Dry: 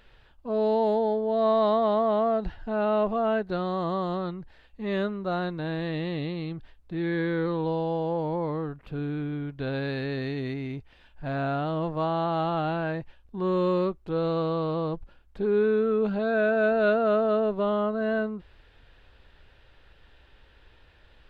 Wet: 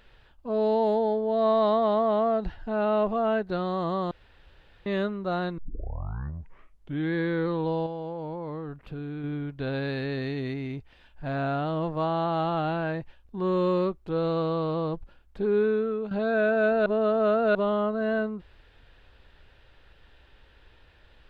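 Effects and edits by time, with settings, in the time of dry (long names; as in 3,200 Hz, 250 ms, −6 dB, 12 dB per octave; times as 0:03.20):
0:04.11–0:04.86: fill with room tone
0:05.58: tape start 1.56 s
0:07.86–0:09.24: downward compressor, threshold −32 dBFS
0:15.43–0:16.11: fade out equal-power, to −10.5 dB
0:16.86–0:17.55: reverse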